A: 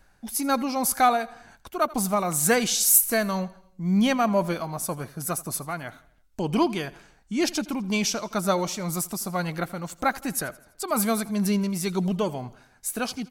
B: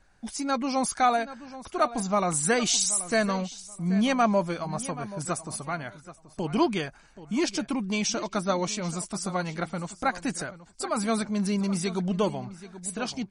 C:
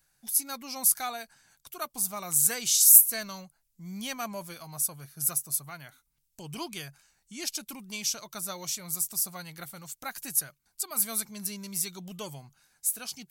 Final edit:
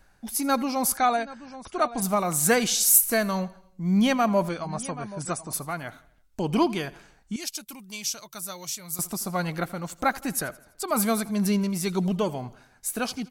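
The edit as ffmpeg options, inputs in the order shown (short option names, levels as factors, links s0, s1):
-filter_complex "[1:a]asplit=2[s0][s1];[0:a]asplit=4[s2][s3][s4][s5];[s2]atrim=end=0.972[s6];[s0]atrim=start=0.968:end=2.022[s7];[s3]atrim=start=2.018:end=4.492[s8];[s1]atrim=start=4.488:end=5.532[s9];[s4]atrim=start=5.528:end=7.362[s10];[2:a]atrim=start=7.358:end=8.992[s11];[s5]atrim=start=8.988[s12];[s6][s7]acrossfade=d=0.004:c1=hsin:c2=hsin[s13];[s13][s8]acrossfade=d=0.004:c1=hsin:c2=hsin[s14];[s14][s9]acrossfade=d=0.004:c1=hsin:c2=hsin[s15];[s15][s10]acrossfade=d=0.004:c1=hsin:c2=hsin[s16];[s16][s11]acrossfade=d=0.004:c1=hsin:c2=hsin[s17];[s17][s12]acrossfade=d=0.004:c1=hsin:c2=hsin"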